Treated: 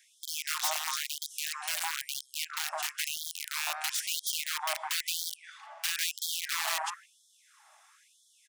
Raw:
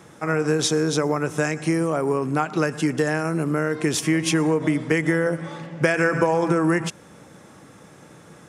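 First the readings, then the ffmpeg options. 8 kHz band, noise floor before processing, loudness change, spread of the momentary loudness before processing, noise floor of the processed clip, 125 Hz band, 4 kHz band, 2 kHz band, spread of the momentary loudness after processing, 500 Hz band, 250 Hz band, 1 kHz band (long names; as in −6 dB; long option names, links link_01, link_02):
−1.5 dB, −48 dBFS, −10.0 dB, 4 LU, −66 dBFS, below −40 dB, +0.5 dB, −10.0 dB, 6 LU, −27.5 dB, below −40 dB, −10.0 dB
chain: -filter_complex "[0:a]aeval=exprs='(mod(5.96*val(0)+1,2)-1)/5.96':channel_layout=same,acrossover=split=490|1500[link_01][link_02][link_03];[link_02]adelay=160[link_04];[link_01]adelay=640[link_05];[link_05][link_04][link_03]amix=inputs=3:normalize=0,afftfilt=real='re*gte(b*sr/1024,580*pow(3200/580,0.5+0.5*sin(2*PI*1*pts/sr)))':imag='im*gte(b*sr/1024,580*pow(3200/580,0.5+0.5*sin(2*PI*1*pts/sr)))':win_size=1024:overlap=0.75,volume=-6.5dB"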